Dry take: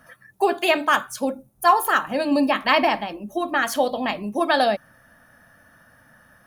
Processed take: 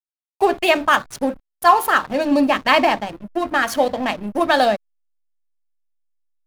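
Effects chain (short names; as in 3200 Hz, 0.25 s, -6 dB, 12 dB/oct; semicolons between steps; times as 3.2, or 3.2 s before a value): backlash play -28 dBFS; gain +3.5 dB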